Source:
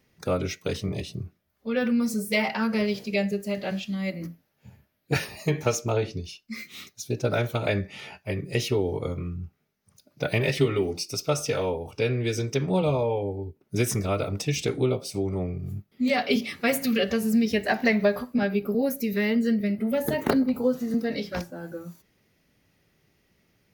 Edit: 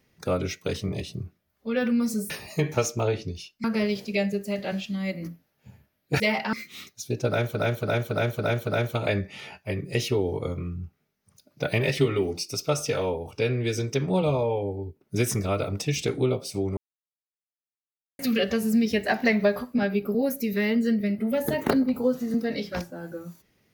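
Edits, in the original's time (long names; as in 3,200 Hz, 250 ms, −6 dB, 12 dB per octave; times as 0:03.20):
0:02.30–0:02.63: swap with 0:05.19–0:06.53
0:07.27–0:07.55: repeat, 6 plays
0:15.37–0:16.79: silence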